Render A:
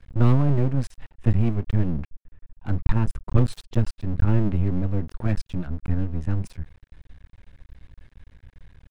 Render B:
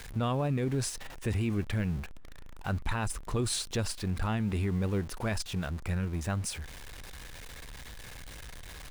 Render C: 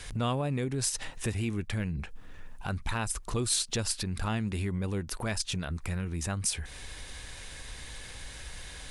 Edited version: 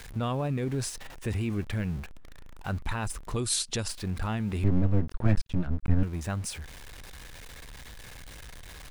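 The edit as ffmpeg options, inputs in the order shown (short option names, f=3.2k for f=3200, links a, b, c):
-filter_complex "[1:a]asplit=3[a][b][c];[a]atrim=end=3.362[d];[2:a]atrim=start=3.358:end=3.882[e];[b]atrim=start=3.878:end=4.642[f];[0:a]atrim=start=4.638:end=6.032[g];[c]atrim=start=6.028[h];[d][e]acrossfade=d=0.004:c1=hsin:c2=hsin[i];[i][f]acrossfade=d=0.004:c1=hsin:c2=hsin[j];[j][g]acrossfade=d=0.004:c1=hsin:c2=hsin[k];[k][h]acrossfade=d=0.004:c1=hsin:c2=hsin"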